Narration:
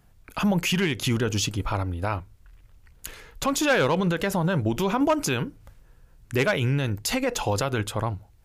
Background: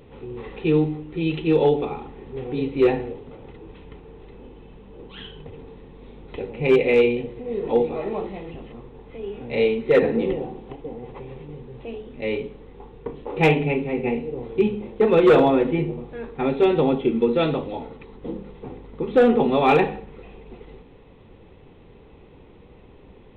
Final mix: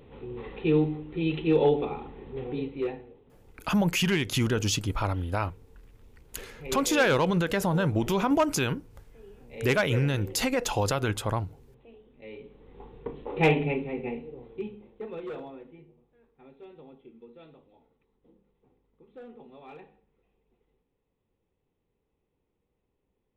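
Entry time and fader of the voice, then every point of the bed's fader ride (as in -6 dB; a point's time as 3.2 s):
3.30 s, -1.5 dB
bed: 2.48 s -4 dB
3.06 s -18.5 dB
12.32 s -18.5 dB
12.81 s -4.5 dB
13.6 s -4.5 dB
15.93 s -30.5 dB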